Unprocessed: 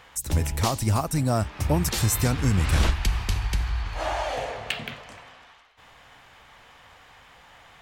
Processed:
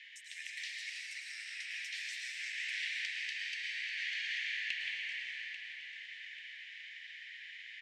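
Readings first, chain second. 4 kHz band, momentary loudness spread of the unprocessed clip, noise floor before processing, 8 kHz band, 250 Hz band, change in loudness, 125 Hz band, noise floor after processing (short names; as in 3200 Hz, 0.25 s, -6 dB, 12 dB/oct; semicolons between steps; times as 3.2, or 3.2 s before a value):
-6.0 dB, 9 LU, -53 dBFS, -19.5 dB, under -40 dB, -14.0 dB, under -40 dB, -51 dBFS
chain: steep high-pass 1800 Hz 96 dB/oct; compressor 4:1, threshold -41 dBFS, peak gain reduction 16.5 dB; tape spacing loss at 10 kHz 33 dB; feedback echo 0.84 s, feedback 39%, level -11.5 dB; plate-style reverb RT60 4.1 s, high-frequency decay 0.5×, pre-delay 95 ms, DRR -3.5 dB; gain +10.5 dB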